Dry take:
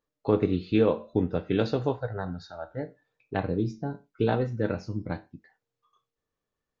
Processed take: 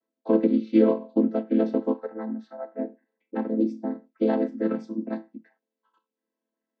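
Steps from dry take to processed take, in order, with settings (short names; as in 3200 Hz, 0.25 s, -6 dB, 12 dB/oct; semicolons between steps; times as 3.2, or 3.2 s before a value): chord vocoder minor triad, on A3; 1.43–3.61 high shelf 2600 Hz -11.5 dB; gain +4 dB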